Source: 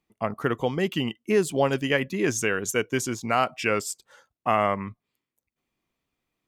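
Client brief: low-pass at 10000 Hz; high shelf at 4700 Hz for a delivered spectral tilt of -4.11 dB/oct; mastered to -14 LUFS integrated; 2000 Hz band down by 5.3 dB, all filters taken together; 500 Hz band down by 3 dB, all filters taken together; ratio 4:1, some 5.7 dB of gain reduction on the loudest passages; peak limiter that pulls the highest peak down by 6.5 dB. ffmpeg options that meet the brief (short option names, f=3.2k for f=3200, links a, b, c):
-af "lowpass=10k,equalizer=f=500:t=o:g=-3.5,equalizer=f=2k:t=o:g=-7.5,highshelf=f=4.7k:g=4,acompressor=threshold=-26dB:ratio=4,volume=19.5dB,alimiter=limit=-2.5dB:level=0:latency=1"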